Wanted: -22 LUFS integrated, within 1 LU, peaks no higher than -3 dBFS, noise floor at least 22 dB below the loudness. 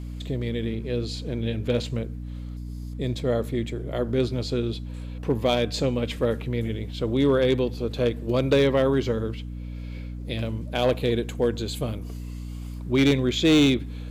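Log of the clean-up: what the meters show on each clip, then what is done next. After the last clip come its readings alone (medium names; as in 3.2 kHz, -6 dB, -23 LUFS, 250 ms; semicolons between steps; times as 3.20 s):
clipped samples 0.4%; clipping level -13.0 dBFS; hum 60 Hz; highest harmonic 300 Hz; hum level -32 dBFS; loudness -25.0 LUFS; peak level -13.0 dBFS; loudness target -22.0 LUFS
-> clip repair -13 dBFS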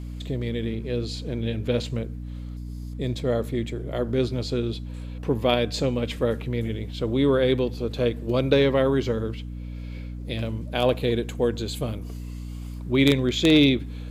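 clipped samples 0.0%; hum 60 Hz; highest harmonic 300 Hz; hum level -32 dBFS
-> de-hum 60 Hz, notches 5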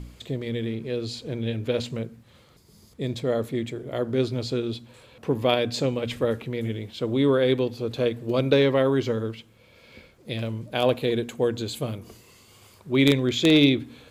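hum not found; loudness -25.0 LUFS; peak level -4.0 dBFS; loudness target -22.0 LUFS
-> trim +3 dB; peak limiter -3 dBFS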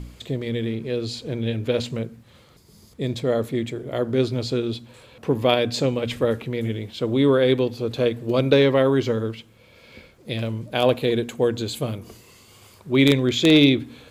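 loudness -22.0 LUFS; peak level -3.0 dBFS; noise floor -53 dBFS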